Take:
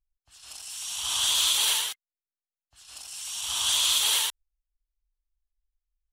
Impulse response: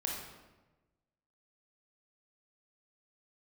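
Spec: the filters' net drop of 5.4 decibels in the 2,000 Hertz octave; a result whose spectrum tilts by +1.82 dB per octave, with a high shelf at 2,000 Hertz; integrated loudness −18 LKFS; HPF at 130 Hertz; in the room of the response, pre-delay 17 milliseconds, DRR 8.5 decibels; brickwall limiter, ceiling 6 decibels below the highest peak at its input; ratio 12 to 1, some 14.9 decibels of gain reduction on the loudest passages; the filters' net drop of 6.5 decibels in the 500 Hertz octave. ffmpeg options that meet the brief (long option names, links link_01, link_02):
-filter_complex "[0:a]highpass=130,equalizer=frequency=500:width_type=o:gain=-8,highshelf=frequency=2000:gain=-3,equalizer=frequency=2000:width_type=o:gain=-5,acompressor=threshold=-39dB:ratio=12,alimiter=level_in=11.5dB:limit=-24dB:level=0:latency=1,volume=-11.5dB,asplit=2[link_01][link_02];[1:a]atrim=start_sample=2205,adelay=17[link_03];[link_02][link_03]afir=irnorm=-1:irlink=0,volume=-11.5dB[link_04];[link_01][link_04]amix=inputs=2:normalize=0,volume=25dB"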